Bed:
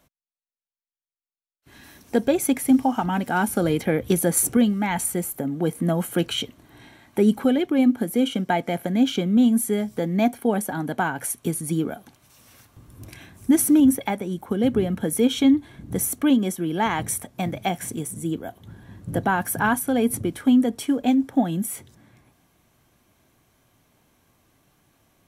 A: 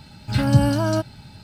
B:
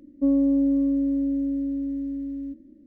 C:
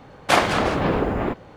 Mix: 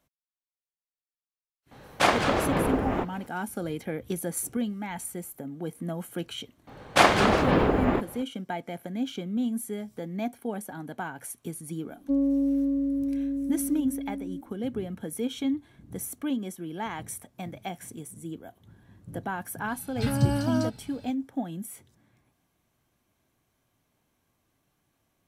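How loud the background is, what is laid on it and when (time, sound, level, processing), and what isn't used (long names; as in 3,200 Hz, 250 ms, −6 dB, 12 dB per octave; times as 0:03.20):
bed −11 dB
0:01.71: mix in C −4.5 dB
0:06.67: mix in C −1 dB
0:11.87: mix in B −4 dB
0:19.68: mix in A −7.5 dB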